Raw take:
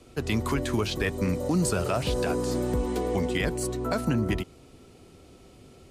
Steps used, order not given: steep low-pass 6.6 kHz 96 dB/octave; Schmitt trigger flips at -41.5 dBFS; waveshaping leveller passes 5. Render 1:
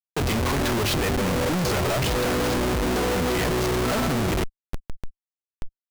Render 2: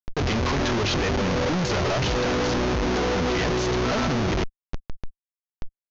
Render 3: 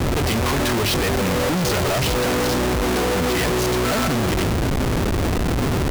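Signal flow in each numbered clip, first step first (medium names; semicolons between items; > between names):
steep low-pass > Schmitt trigger > waveshaping leveller; Schmitt trigger > waveshaping leveller > steep low-pass; waveshaping leveller > steep low-pass > Schmitt trigger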